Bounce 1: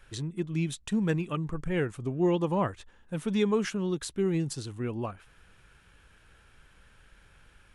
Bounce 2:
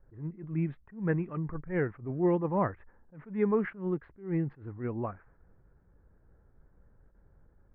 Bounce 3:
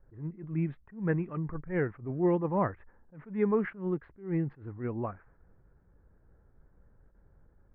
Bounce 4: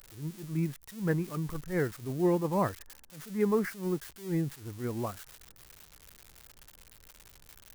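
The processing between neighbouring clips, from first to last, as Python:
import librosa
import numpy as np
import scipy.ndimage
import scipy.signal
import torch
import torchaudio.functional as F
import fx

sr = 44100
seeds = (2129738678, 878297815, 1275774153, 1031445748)

y1 = scipy.signal.sosfilt(scipy.signal.ellip(4, 1.0, 80, 2000.0, 'lowpass', fs=sr, output='sos'), x)
y1 = fx.env_lowpass(y1, sr, base_hz=510.0, full_db=-26.0)
y1 = fx.attack_slew(y1, sr, db_per_s=160.0)
y2 = y1
y3 = y2 + 0.5 * 10.0 ** (-33.5 / 20.0) * np.diff(np.sign(y2), prepend=np.sign(y2[:1]))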